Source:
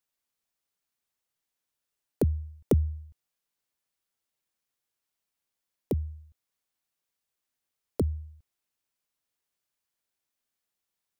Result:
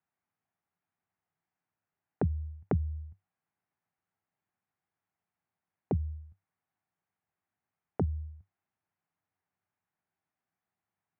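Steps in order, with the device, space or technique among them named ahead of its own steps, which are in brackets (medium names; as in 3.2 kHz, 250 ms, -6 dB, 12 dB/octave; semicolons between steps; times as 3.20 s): bass amplifier (compression 5:1, threshold -31 dBFS, peak gain reduction 11.5 dB; cabinet simulation 68–2100 Hz, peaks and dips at 97 Hz +9 dB, 170 Hz +9 dB, 510 Hz -6 dB, 770 Hz +6 dB); trim +2 dB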